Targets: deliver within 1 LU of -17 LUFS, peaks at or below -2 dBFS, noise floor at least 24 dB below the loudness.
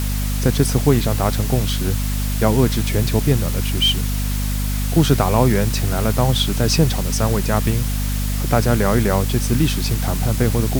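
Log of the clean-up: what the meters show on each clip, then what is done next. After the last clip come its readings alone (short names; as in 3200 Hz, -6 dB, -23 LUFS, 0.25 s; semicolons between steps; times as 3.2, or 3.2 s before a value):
hum 50 Hz; harmonics up to 250 Hz; hum level -19 dBFS; noise floor -21 dBFS; noise floor target -43 dBFS; loudness -18.5 LUFS; peak -1.5 dBFS; loudness target -17.0 LUFS
-> notches 50/100/150/200/250 Hz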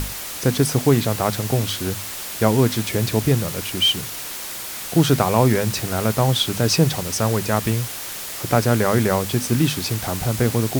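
hum none; noise floor -31 dBFS; noise floor target -45 dBFS
-> denoiser 14 dB, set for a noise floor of -31 dBFS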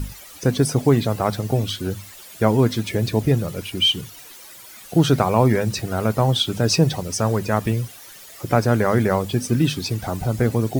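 noise floor -42 dBFS; noise floor target -45 dBFS
-> denoiser 6 dB, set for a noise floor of -42 dBFS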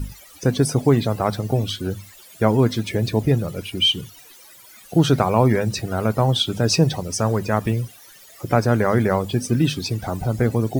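noise floor -46 dBFS; loudness -20.5 LUFS; peak -2.0 dBFS; loudness target -17.0 LUFS
-> gain +3.5 dB; limiter -2 dBFS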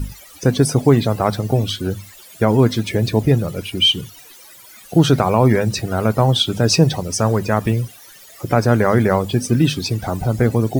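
loudness -17.5 LUFS; peak -2.0 dBFS; noise floor -43 dBFS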